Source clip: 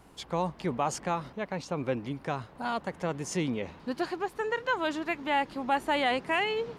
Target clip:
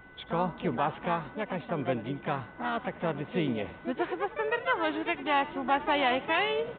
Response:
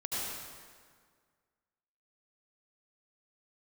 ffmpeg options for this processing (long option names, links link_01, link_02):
-filter_complex "[0:a]aeval=exprs='val(0)+0.00224*sin(2*PI*1500*n/s)':channel_layout=same,asplit=2[link_01][link_02];[link_02]asplit=3[link_03][link_04][link_05];[link_03]adelay=86,afreqshift=58,volume=-17.5dB[link_06];[link_04]adelay=172,afreqshift=116,volume=-25.7dB[link_07];[link_05]adelay=258,afreqshift=174,volume=-33.9dB[link_08];[link_06][link_07][link_08]amix=inputs=3:normalize=0[link_09];[link_01][link_09]amix=inputs=2:normalize=0,asplit=2[link_10][link_11];[link_11]asetrate=58866,aresample=44100,atempo=0.749154,volume=-7dB[link_12];[link_10][link_12]amix=inputs=2:normalize=0,aresample=8000,aresample=44100"